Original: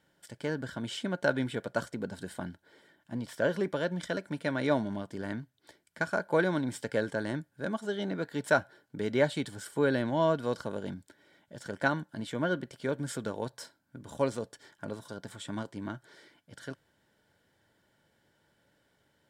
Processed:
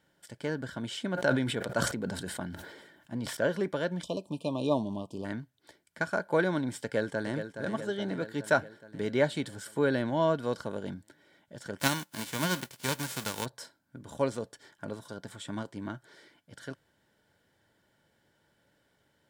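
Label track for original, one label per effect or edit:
1.110000	3.370000	sustainer at most 45 dB/s
4.030000	5.250000	brick-wall FIR band-stop 1200–2400 Hz
6.820000	7.510000	echo throw 0.42 s, feedback 65%, level -8.5 dB
11.780000	13.440000	spectral whitening exponent 0.3

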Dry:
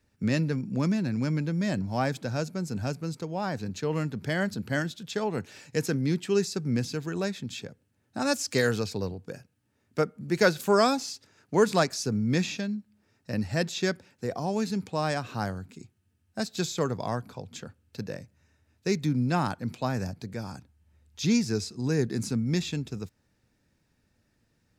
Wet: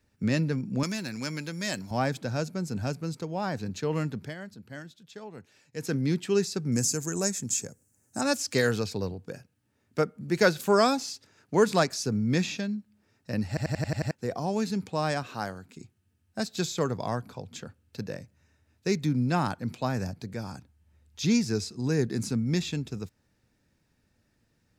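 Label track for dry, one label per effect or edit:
0.830000	1.910000	tilt +3.5 dB/oct
4.140000	5.950000	dip -13.5 dB, fades 0.21 s
6.720000	8.210000	resonant high shelf 5100 Hz +12.5 dB, Q 3
13.480000	13.480000	stutter in place 0.09 s, 7 plays
15.230000	15.770000	low shelf 190 Hz -11.5 dB

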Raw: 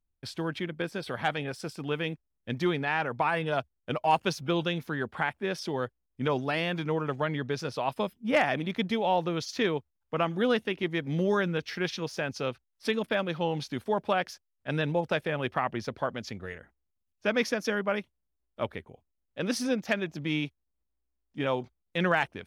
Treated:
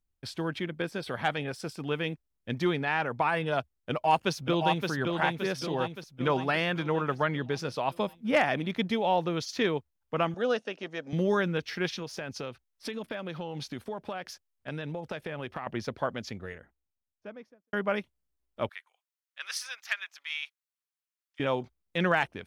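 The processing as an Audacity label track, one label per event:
3.900000	4.890000	echo throw 0.57 s, feedback 55%, level -4 dB
6.270000	7.340000	bell 1400 Hz +4.5 dB 1.2 oct
10.340000	11.130000	speaker cabinet 330–8000 Hz, peaks and dips at 350 Hz -9 dB, 590 Hz +5 dB, 980 Hz -5 dB, 2100 Hz -10 dB, 3400 Hz -7 dB, 5900 Hz +5 dB
11.870000	15.670000	compressor, threshold -32 dBFS
16.180000	17.730000	studio fade out
18.690000	21.400000	HPF 1200 Hz 24 dB/oct

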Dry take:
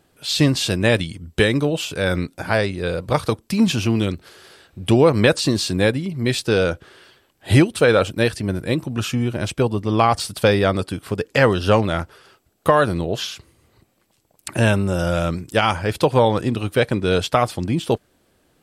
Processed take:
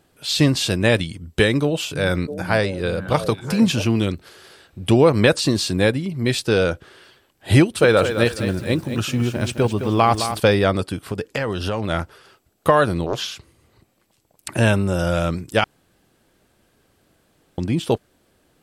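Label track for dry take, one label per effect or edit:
1.610000	3.850000	delay with a stepping band-pass 0.328 s, band-pass from 170 Hz, each repeat 1.4 oct, level -5.5 dB
7.610000	10.400000	lo-fi delay 0.213 s, feedback 35%, word length 7-bit, level -9 dB
10.970000	11.900000	compressor 10:1, threshold -19 dBFS
13.060000	14.520000	Doppler distortion depth 0.56 ms
15.640000	17.580000	room tone

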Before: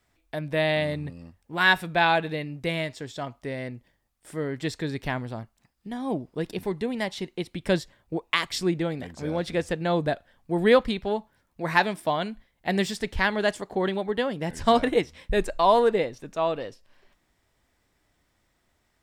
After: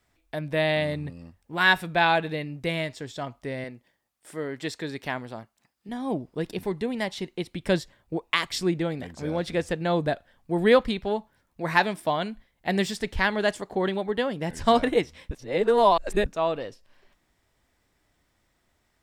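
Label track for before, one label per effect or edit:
3.640000	5.890000	HPF 290 Hz 6 dB/oct
15.310000	16.260000	reverse

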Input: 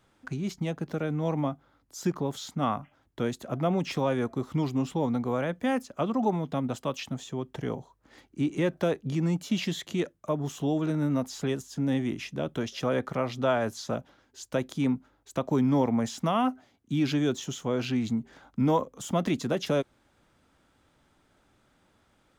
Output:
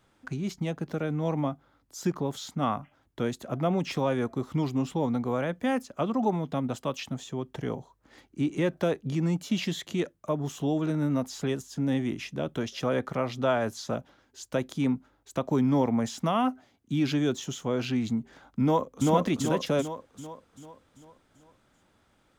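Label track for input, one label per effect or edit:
18.620000	19.100000	echo throw 0.39 s, feedback 50%, level 0 dB

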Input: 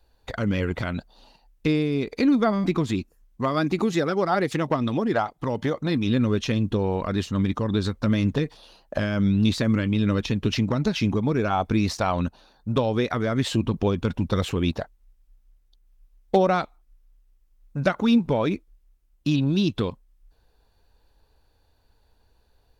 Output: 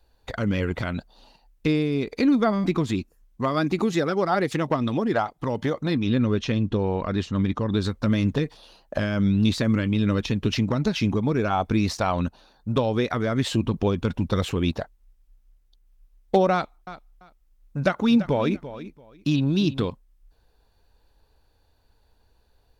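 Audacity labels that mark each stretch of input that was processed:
5.940000	7.720000	air absorption 64 m
16.530000	19.850000	feedback echo 0.339 s, feedback 20%, level -14 dB

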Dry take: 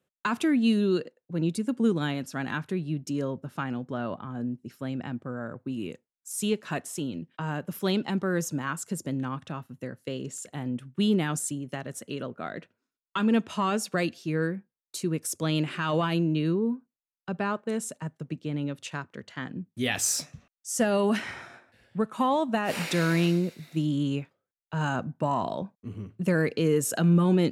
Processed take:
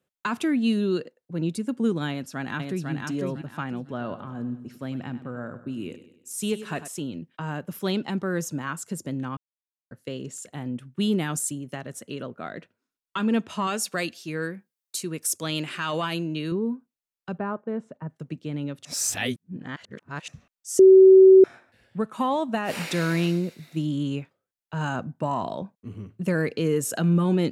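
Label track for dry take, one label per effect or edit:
2.090000	2.910000	echo throw 0.5 s, feedback 25%, level -3.5 dB
3.820000	6.880000	feedback echo 98 ms, feedback 46%, level -13 dB
9.370000	9.910000	mute
11.010000	11.730000	high shelf 8300 Hz +7 dB
13.670000	16.520000	tilt +2 dB/oct
17.380000	18.100000	LPF 1300 Hz
18.850000	20.280000	reverse
20.790000	21.440000	bleep 380 Hz -8 dBFS

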